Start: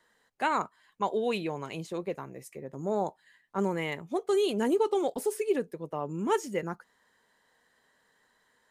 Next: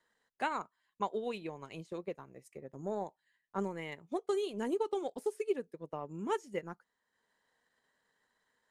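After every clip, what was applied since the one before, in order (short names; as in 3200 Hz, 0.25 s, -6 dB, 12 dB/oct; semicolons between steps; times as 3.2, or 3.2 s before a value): LPF 11000 Hz 12 dB/oct; transient shaper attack +5 dB, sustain -6 dB; gain -9 dB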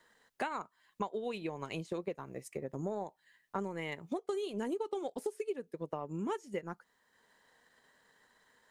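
compressor 5:1, threshold -45 dBFS, peak gain reduction 16.5 dB; gain +10 dB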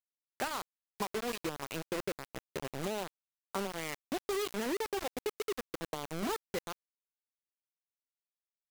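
bit-crush 6-bit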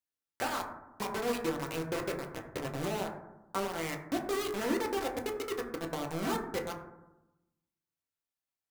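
reverb RT60 0.95 s, pre-delay 5 ms, DRR 0.5 dB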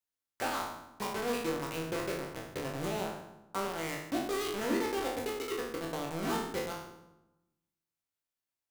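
spectral trails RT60 0.70 s; gain -2.5 dB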